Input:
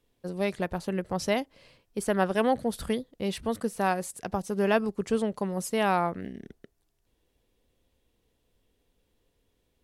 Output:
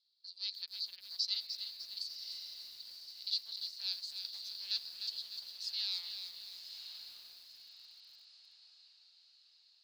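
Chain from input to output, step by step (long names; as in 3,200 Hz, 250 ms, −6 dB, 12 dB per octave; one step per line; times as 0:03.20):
0:02.04–0:03.27: gate with flip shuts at −25 dBFS, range −30 dB
on a send: feedback delay with all-pass diffusion 1,076 ms, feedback 50%, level −7.5 dB
on the sum: tube saturation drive 21 dB, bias 0.75
flat-topped band-pass 4,400 Hz, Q 5.6
feedback echo at a low word length 301 ms, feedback 55%, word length 12 bits, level −7 dB
level +18 dB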